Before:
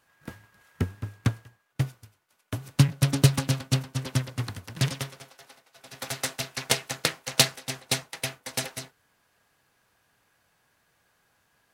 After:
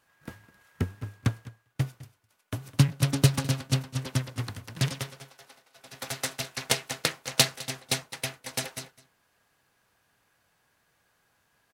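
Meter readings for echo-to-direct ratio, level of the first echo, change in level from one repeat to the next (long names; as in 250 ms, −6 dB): −19.5 dB, −19.5 dB, repeats not evenly spaced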